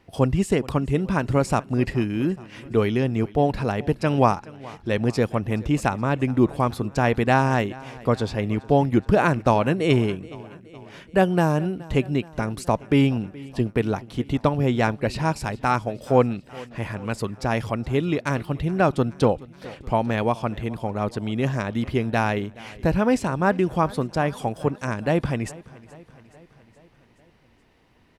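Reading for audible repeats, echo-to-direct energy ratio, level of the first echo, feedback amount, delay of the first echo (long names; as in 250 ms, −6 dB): 4, −19.0 dB, −21.0 dB, 60%, 423 ms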